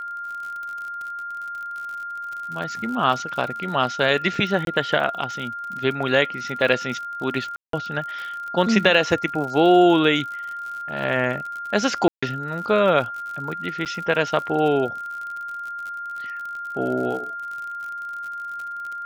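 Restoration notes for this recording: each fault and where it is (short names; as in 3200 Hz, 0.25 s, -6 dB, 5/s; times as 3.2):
crackle 58/s -31 dBFS
tone 1400 Hz -29 dBFS
4.65–4.67 gap 22 ms
7.56–7.73 gap 0.173 s
12.08–12.22 gap 0.145 s
13.85–13.86 gap 8.2 ms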